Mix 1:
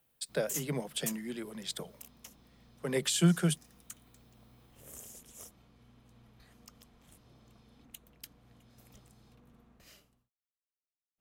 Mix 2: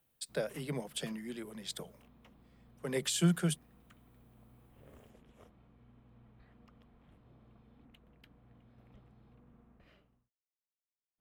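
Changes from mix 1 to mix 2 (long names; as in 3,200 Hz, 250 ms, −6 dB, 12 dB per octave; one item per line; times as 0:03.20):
speech −3.0 dB
background: add high-frequency loss of the air 500 metres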